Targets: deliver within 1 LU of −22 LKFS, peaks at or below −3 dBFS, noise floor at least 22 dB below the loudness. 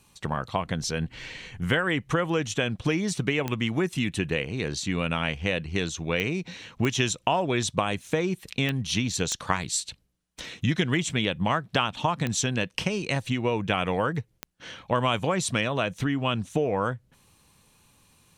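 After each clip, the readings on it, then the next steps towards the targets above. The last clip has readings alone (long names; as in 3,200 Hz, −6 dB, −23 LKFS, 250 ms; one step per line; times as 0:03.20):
number of clicks 7; integrated loudness −27.0 LKFS; sample peak −6.5 dBFS; target loudness −22.0 LKFS
→ click removal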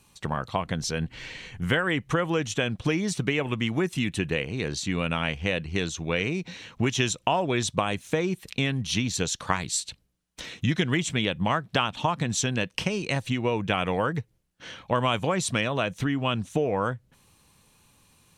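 number of clicks 0; integrated loudness −27.0 LKFS; sample peak −6.5 dBFS; target loudness −22.0 LKFS
→ level +5 dB
brickwall limiter −3 dBFS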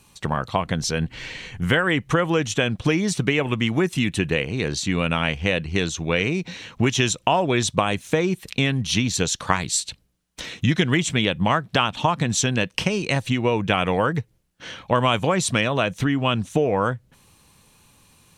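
integrated loudness −22.0 LKFS; sample peak −3.0 dBFS; background noise floor −61 dBFS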